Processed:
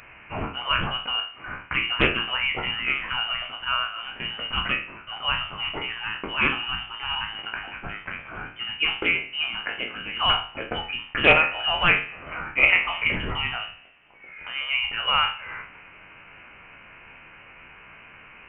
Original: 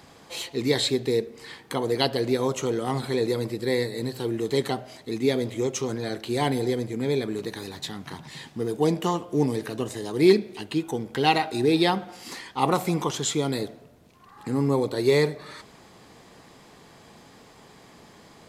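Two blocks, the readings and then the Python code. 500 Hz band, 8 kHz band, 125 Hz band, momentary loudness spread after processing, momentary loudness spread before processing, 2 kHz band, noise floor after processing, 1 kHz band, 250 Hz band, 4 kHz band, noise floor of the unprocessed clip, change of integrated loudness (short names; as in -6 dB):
-9.5 dB, under -40 dB, -7.5 dB, 15 LU, 13 LU, +12.5 dB, -48 dBFS, +1.5 dB, -11.5 dB, +8.0 dB, -52 dBFS, +1.5 dB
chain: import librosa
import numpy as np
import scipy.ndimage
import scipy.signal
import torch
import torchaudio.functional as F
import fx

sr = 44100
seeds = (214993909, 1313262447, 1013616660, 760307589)

y = fx.spec_trails(x, sr, decay_s=0.41)
y = scipy.signal.sosfilt(scipy.signal.butter(2, 900.0, 'highpass', fs=sr, output='sos'), y)
y = fx.freq_invert(y, sr, carrier_hz=3300)
y = fx.doppler_dist(y, sr, depth_ms=0.21)
y = y * 10.0 ** (8.0 / 20.0)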